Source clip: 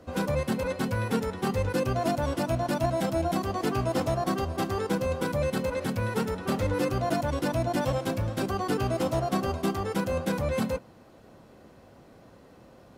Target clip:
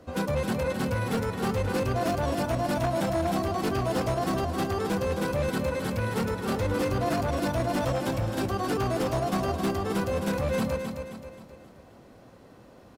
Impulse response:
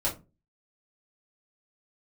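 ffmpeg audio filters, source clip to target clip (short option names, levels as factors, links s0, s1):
-af "aecho=1:1:265|530|795|1060|1325:0.447|0.197|0.0865|0.0381|0.0167,aeval=exprs='0.1*(abs(mod(val(0)/0.1+3,4)-2)-1)':c=same"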